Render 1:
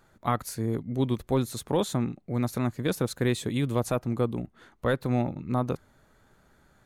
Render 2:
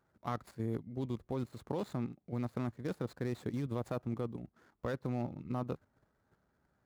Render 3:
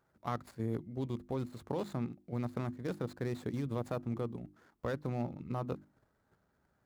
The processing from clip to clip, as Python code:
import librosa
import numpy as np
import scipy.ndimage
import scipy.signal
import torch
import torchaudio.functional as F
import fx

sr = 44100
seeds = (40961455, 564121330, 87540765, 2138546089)

y1 = scipy.ndimage.median_filter(x, 15, mode='constant')
y1 = fx.level_steps(y1, sr, step_db=10)
y1 = scipy.signal.sosfilt(scipy.signal.butter(2, 49.0, 'highpass', fs=sr, output='sos'), y1)
y1 = y1 * librosa.db_to_amplitude(-5.0)
y2 = fx.hum_notches(y1, sr, base_hz=50, count=7)
y2 = y2 * librosa.db_to_amplitude(1.0)